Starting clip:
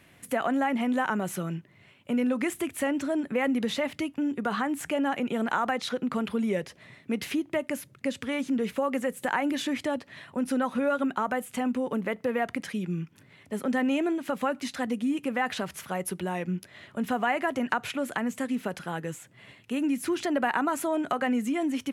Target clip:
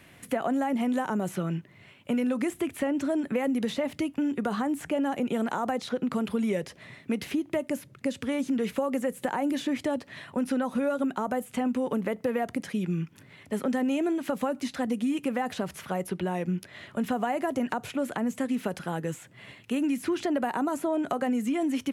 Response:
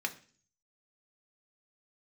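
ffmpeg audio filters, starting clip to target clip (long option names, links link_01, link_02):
-filter_complex "[0:a]acrossover=split=860|4700[link_01][link_02][link_03];[link_01]acompressor=threshold=-28dB:ratio=4[link_04];[link_02]acompressor=threshold=-44dB:ratio=4[link_05];[link_03]acompressor=threshold=-50dB:ratio=4[link_06];[link_04][link_05][link_06]amix=inputs=3:normalize=0,volume=3.5dB"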